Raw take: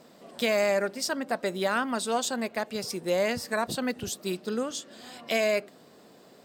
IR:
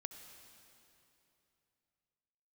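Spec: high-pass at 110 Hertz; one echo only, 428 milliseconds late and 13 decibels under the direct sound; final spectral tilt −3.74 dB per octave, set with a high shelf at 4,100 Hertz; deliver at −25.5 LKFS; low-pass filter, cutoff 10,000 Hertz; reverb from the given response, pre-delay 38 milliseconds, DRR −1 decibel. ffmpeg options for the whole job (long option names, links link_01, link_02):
-filter_complex "[0:a]highpass=110,lowpass=10000,highshelf=frequency=4100:gain=-5.5,aecho=1:1:428:0.224,asplit=2[link_01][link_02];[1:a]atrim=start_sample=2205,adelay=38[link_03];[link_02][link_03]afir=irnorm=-1:irlink=0,volume=4.5dB[link_04];[link_01][link_04]amix=inputs=2:normalize=0,volume=1dB"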